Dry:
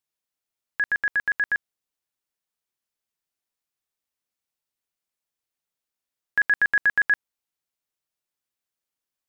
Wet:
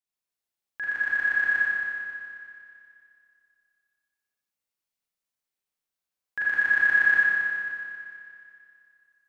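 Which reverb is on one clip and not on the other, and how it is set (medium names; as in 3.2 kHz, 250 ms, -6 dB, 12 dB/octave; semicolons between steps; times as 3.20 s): Schroeder reverb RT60 2.5 s, combs from 30 ms, DRR -8 dB; trim -10 dB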